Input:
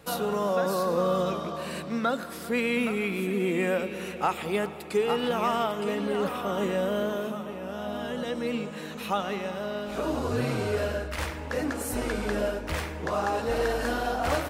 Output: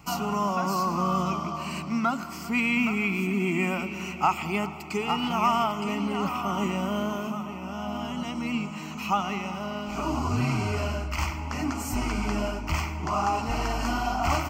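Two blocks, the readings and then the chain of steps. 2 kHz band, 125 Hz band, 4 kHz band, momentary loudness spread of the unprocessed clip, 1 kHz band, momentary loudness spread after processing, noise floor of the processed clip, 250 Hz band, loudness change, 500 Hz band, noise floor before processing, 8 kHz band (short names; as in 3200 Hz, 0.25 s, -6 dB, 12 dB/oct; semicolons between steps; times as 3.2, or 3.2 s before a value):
+1.5 dB, +4.5 dB, +1.5 dB, 7 LU, +4.0 dB, 8 LU, -37 dBFS, +2.5 dB, +1.0 dB, -6.5 dB, -38 dBFS, +1.5 dB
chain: fixed phaser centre 2500 Hz, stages 8; gain +5.5 dB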